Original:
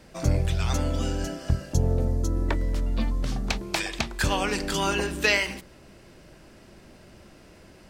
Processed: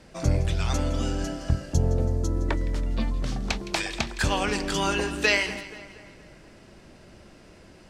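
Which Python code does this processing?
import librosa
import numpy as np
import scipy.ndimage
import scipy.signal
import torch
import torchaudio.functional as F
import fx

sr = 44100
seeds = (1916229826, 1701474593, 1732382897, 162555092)

y = scipy.signal.sosfilt(scipy.signal.butter(2, 10000.0, 'lowpass', fs=sr, output='sos'), x)
y = fx.echo_split(y, sr, split_hz=1900.0, low_ms=238, high_ms=164, feedback_pct=52, wet_db=-15)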